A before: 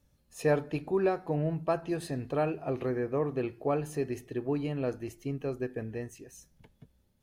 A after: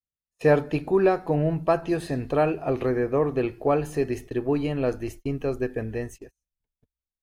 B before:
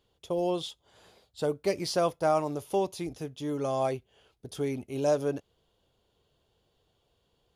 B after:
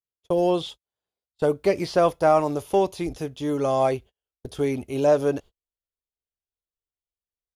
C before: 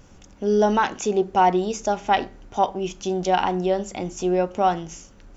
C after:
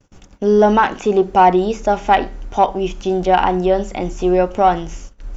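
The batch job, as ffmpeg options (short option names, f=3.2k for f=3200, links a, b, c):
-filter_complex "[0:a]acrossover=split=3200[a][b];[b]acompressor=threshold=-49dB:ratio=4:attack=1:release=60[c];[a][c]amix=inputs=2:normalize=0,agate=range=-41dB:threshold=-47dB:ratio=16:detection=peak,asubboost=boost=5:cutoff=58,asplit=2[d][e];[e]asoftclip=type=tanh:threshold=-17.5dB,volume=-8dB[f];[d][f]amix=inputs=2:normalize=0,volume=5dB"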